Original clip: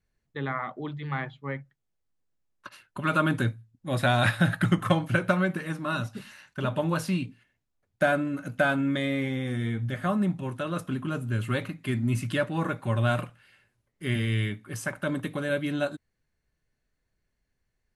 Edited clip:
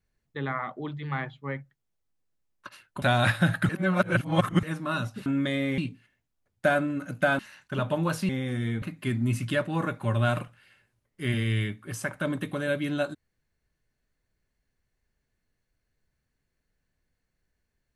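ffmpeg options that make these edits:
-filter_complex "[0:a]asplit=9[a][b][c][d][e][f][g][h][i];[a]atrim=end=3.022[j];[b]atrim=start=4.008:end=4.682[k];[c]atrim=start=4.678:end=5.622,asetpts=PTS-STARTPTS,areverse[l];[d]atrim=start=5.618:end=6.252[m];[e]atrim=start=8.758:end=9.282[n];[f]atrim=start=7.148:end=8.762[o];[g]atrim=start=6.248:end=7.152[p];[h]atrim=start=9.278:end=9.812[q];[i]atrim=start=11.638[r];[j][k]acrossfade=d=0.004:c1=hsin:c2=hsin[s];[s][l]acrossfade=d=0.004:c1=hsin:c2=hsin[t];[t][m]acrossfade=d=0.004:c1=hsin:c2=hsin[u];[u][n]acrossfade=d=0.004:c1=hsin:c2=hsin[v];[v][o]acrossfade=d=0.004:c1=hsin:c2=hsin[w];[w][p]acrossfade=d=0.004:c1=hsin:c2=hsin[x];[x][q]acrossfade=d=0.004:c1=hsin:c2=hsin[y];[y][r]acrossfade=d=0.004:c1=hsin:c2=hsin"

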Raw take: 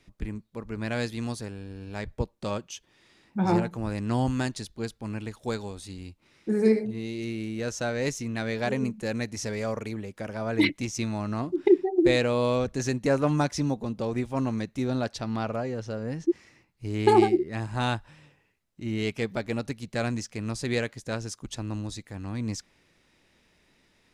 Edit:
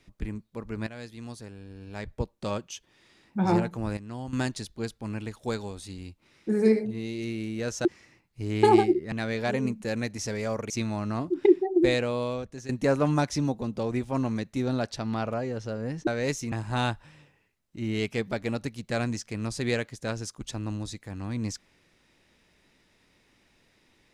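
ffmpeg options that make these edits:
-filter_complex "[0:a]asplit=10[a][b][c][d][e][f][g][h][i][j];[a]atrim=end=0.87,asetpts=PTS-STARTPTS,afade=t=out:st=0.866:d=0.004:c=hsin:silence=0.188365[k];[b]atrim=start=0.87:end=3.972,asetpts=PTS-STARTPTS,afade=t=in:d=1.62:silence=0.188365[l];[c]atrim=start=3.968:end=4.332,asetpts=PTS-STARTPTS,volume=-11.5dB[m];[d]atrim=start=4.328:end=7.852[n];[e]atrim=start=16.288:end=17.562[o];[f]atrim=start=8.298:end=9.882[p];[g]atrim=start=10.918:end=12.91,asetpts=PTS-STARTPTS,afade=t=out:st=1.002:d=0.99:silence=0.177828[q];[h]atrim=start=12.91:end=16.292,asetpts=PTS-STARTPTS,afade=t=in:d=0.004:c=hsin:silence=0.177828[r];[i]atrim=start=7.848:end=8.302[s];[j]atrim=start=17.558[t];[k][l]concat=n=2:v=0:a=1[u];[u][m]acrossfade=d=0.004:c1=hsin:c2=hsin[v];[v][n]acrossfade=d=0.004:c1=hsin:c2=hsin[w];[w][o]acrossfade=d=0.004:c1=hsin:c2=hsin[x];[x][p]acrossfade=d=0.004:c1=hsin:c2=hsin[y];[q][r]concat=n=2:v=0:a=1[z];[y][z]acrossfade=d=0.004:c1=hsin:c2=hsin[aa];[aa][s]acrossfade=d=0.004:c1=hsin:c2=hsin[ab];[ab][t]acrossfade=d=0.004:c1=hsin:c2=hsin"

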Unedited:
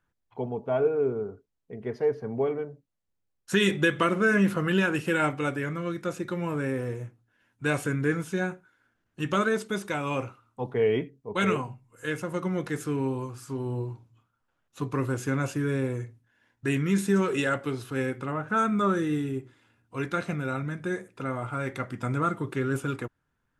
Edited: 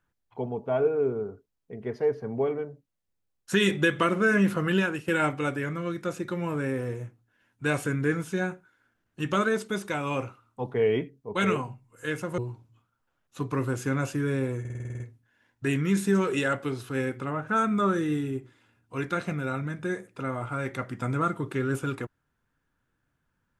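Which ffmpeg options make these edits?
-filter_complex "[0:a]asplit=11[a][b][c][d][e][f][g][h][i][j][k];[a]atrim=end=5.08,asetpts=PTS-STARTPTS,afade=t=out:st=4.77:d=0.31:silence=0.281838[l];[b]atrim=start=5.08:end=12.382,asetpts=PTS-STARTPTS,afade=t=in:d=0.004:c=hsin:silence=0.281838[m];[c]atrim=start=13.788:end=16.062[n];[d]atrim=start=16.008:end=16.062[o];[e]atrim=start=16.008:end=16.062[p];[f]atrim=start=16.008:end=16.062[q];[g]atrim=start=16.008:end=16.062[r];[h]atrim=start=16.008:end=16.062[s];[i]atrim=start=16.008:end=16.062[t];[j]atrim=start=16.008:end=16.062[u];[k]atrim=start=16.008[v];[l][m]concat=n=2:v=0:a=1[w];[w][n]acrossfade=d=0.004:c1=hsin:c2=hsin[x];[x][o]acrossfade=d=0.004:c1=hsin:c2=hsin[y];[y][p]acrossfade=d=0.004:c1=hsin:c2=hsin[z];[z][q]acrossfade=d=0.004:c1=hsin:c2=hsin[aa];[aa][r]acrossfade=d=0.004:c1=hsin:c2=hsin[ab];[ab][s]acrossfade=d=0.004:c1=hsin:c2=hsin[ac];[ac][t]acrossfade=d=0.004:c1=hsin:c2=hsin[ad];[ad][u]acrossfade=d=0.004:c1=hsin:c2=hsin[ae];[ae][v]acrossfade=d=0.004:c1=hsin:c2=hsin"

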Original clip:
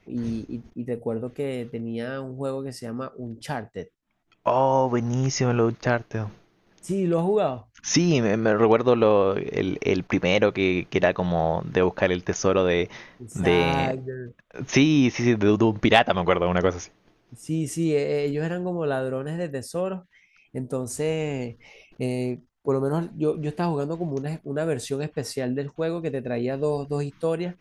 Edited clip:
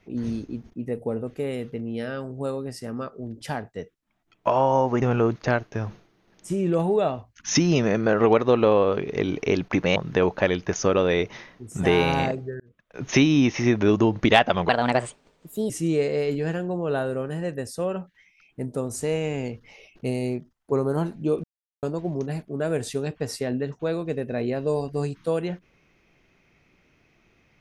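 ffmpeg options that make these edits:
-filter_complex "[0:a]asplit=8[a][b][c][d][e][f][g][h];[a]atrim=end=5.022[i];[b]atrim=start=5.408:end=10.352[j];[c]atrim=start=11.558:end=14.2,asetpts=PTS-STARTPTS,afade=t=out:st=2.638:d=0.004:c=hsin[k];[d]atrim=start=14.2:end=16.294,asetpts=PTS-STARTPTS,afade=t=in:d=0.41[l];[e]atrim=start=16.29:end=17.66,asetpts=PTS-STARTPTS,asetrate=59976,aresample=44100,atrim=end_sample=44424,asetpts=PTS-STARTPTS[m];[f]atrim=start=17.656:end=23.4,asetpts=PTS-STARTPTS,afade=t=out:st=5.74:d=0.004:c=hsin[n];[g]atrim=start=23.4:end=23.79,asetpts=PTS-STARTPTS,volume=0[o];[h]atrim=start=23.79,asetpts=PTS-STARTPTS,afade=t=in:d=0.004:c=hsin[p];[i][j]acrossfade=d=0.004:c1=hsin:c2=hsin[q];[k][l]concat=n=2:v=0:a=1[r];[q][r]acrossfade=d=0.004:c1=hsin:c2=hsin[s];[s][m]acrossfade=d=0.004:c1=hsin:c2=hsin[t];[n][o][p]concat=n=3:v=0:a=1[u];[t][u]acrossfade=d=0.004:c1=hsin:c2=hsin"

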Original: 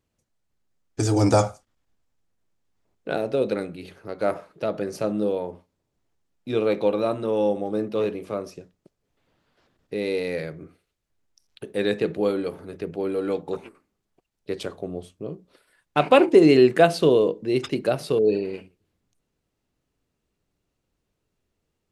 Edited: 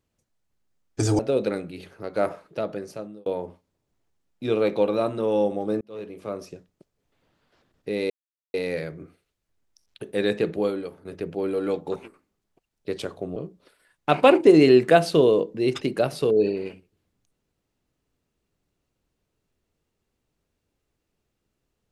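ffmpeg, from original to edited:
-filter_complex "[0:a]asplit=7[a][b][c][d][e][f][g];[a]atrim=end=1.192[h];[b]atrim=start=3.238:end=5.31,asetpts=PTS-STARTPTS,afade=t=out:st=1.272:d=0.8[i];[c]atrim=start=5.31:end=7.86,asetpts=PTS-STARTPTS,afade=t=in:d=0.004:c=hsin,afade=t=out:st=2.546:d=0.004:c=hsin[j];[d]atrim=start=7.86:end=10.15,asetpts=PTS-STARTPTS,afade=t=in:d=0.68,afade=t=out:st=2.286:d=0.004:c=hsin,apad=pad_dur=0.44[k];[e]atrim=start=10.15:end=12.66,asetpts=PTS-STARTPTS,afade=t=in:d=0.004:c=hsin,afade=t=out:st=1.99:d=0.52:silence=0.237137[l];[f]atrim=start=12.66:end=14.972,asetpts=PTS-STARTPTS,afade=t=in:d=0.004:c=hsin:silence=0.237137[m];[g]atrim=start=15.238[n];[i][j][k][l][m]concat=n=5:v=0:a=1[o];[h][o]acrossfade=d=0.004:c1=hsin:c2=hsin[p];[p][n]acrossfade=d=0.004:c1=hsin:c2=hsin"

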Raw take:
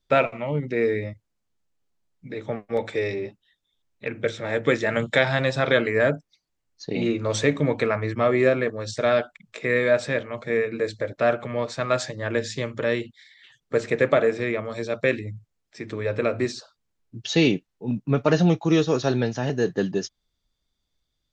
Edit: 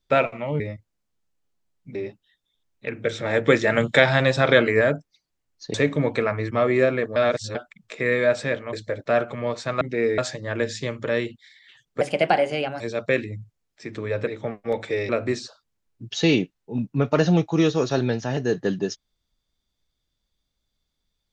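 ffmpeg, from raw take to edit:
-filter_complex "[0:a]asplit=15[a][b][c][d][e][f][g][h][i][j][k][l][m][n][o];[a]atrim=end=0.602[p];[b]atrim=start=0.968:end=2.322[q];[c]atrim=start=3.138:end=4.312[r];[d]atrim=start=4.308:end=6.002,asetpts=PTS-STARTPTS,volume=3.5dB[s];[e]atrim=start=5.998:end=6.932[t];[f]atrim=start=7.378:end=8.802[u];[g]atrim=start=8.798:end=9.192,asetpts=PTS-STARTPTS,areverse[v];[h]atrim=start=9.188:end=10.372[w];[i]atrim=start=10.848:end=11.932[x];[j]atrim=start=0.598:end=0.972[y];[k]atrim=start=11.928:end=13.764[z];[l]atrim=start=13.76:end=14.75,asetpts=PTS-STARTPTS,asetrate=55125,aresample=44100,atrim=end_sample=34927,asetpts=PTS-STARTPTS[aa];[m]atrim=start=14.746:end=16.222[ab];[n]atrim=start=2.318:end=3.142[ac];[o]atrim=start=16.218[ad];[p][q]acrossfade=d=0.004:c1=hsin:c2=hsin[ae];[ae][r]acrossfade=d=0.004:c1=hsin:c2=hsin[af];[af][s]acrossfade=d=0.004:c1=hsin:c2=hsin[ag];[ag][t]acrossfade=d=0.004:c1=hsin:c2=hsin[ah];[ah][u]acrossfade=d=0.004:c1=hsin:c2=hsin[ai];[ai][v]acrossfade=d=0.004:c1=hsin:c2=hsin[aj];[aj][w]acrossfade=d=0.004:c1=hsin:c2=hsin[ak];[ak][x]acrossfade=d=0.004:c1=hsin:c2=hsin[al];[al][y]acrossfade=d=0.004:c1=hsin:c2=hsin[am];[am][z]acrossfade=d=0.004:c1=hsin:c2=hsin[an];[an][aa]acrossfade=d=0.004:c1=hsin:c2=hsin[ao];[ao][ab]acrossfade=d=0.004:c1=hsin:c2=hsin[ap];[ap][ac]acrossfade=d=0.004:c1=hsin:c2=hsin[aq];[aq][ad]acrossfade=d=0.004:c1=hsin:c2=hsin"

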